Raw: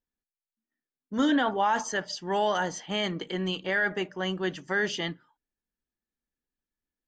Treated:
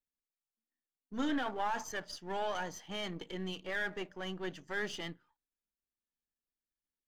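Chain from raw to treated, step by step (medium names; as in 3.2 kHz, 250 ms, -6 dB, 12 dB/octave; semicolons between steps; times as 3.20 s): partial rectifier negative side -7 dB; trim -7 dB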